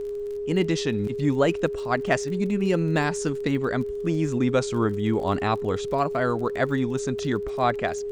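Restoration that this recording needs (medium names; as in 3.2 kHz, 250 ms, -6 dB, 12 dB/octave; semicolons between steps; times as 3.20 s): clip repair -9 dBFS; de-click; band-stop 410 Hz, Q 30; expander -23 dBFS, range -21 dB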